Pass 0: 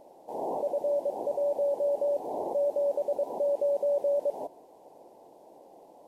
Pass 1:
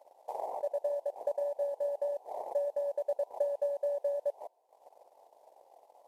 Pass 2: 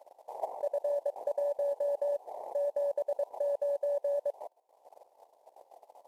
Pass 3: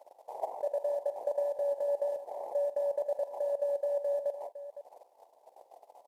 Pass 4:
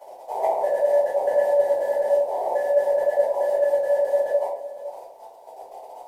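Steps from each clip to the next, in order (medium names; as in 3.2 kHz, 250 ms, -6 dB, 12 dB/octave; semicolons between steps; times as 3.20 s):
high-pass 560 Hz 24 dB/octave; transient shaper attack +10 dB, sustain -11 dB; trim -5.5 dB
level held to a coarse grid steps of 12 dB; trim +6 dB
multi-tap echo 46/509 ms -15/-13 dB
saturation -22.5 dBFS, distortion -25 dB; simulated room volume 52 m³, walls mixed, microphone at 1.9 m; trim +6 dB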